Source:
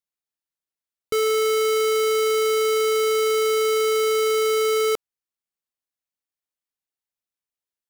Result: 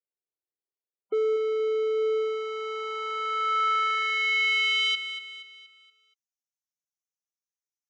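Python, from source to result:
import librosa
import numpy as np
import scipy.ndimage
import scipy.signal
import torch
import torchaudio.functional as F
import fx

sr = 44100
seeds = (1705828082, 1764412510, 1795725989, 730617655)

y = scipy.signal.sosfilt(scipy.signal.butter(4, 81.0, 'highpass', fs=sr, output='sos'), x)
y = fx.low_shelf(y, sr, hz=230.0, db=-6.0)
y = (np.mod(10.0 ** (18.0 / 20.0) * y + 1.0, 2.0) - 1.0) / 10.0 ** (18.0 / 20.0)
y = fx.filter_sweep_bandpass(y, sr, from_hz=410.0, to_hz=6100.0, start_s=1.94, end_s=5.87, q=3.0)
y = fx.spec_topn(y, sr, count=32)
y = fx.echo_feedback(y, sr, ms=237, feedback_pct=44, wet_db=-11.0)
y = y * librosa.db_to_amplitude(5.0)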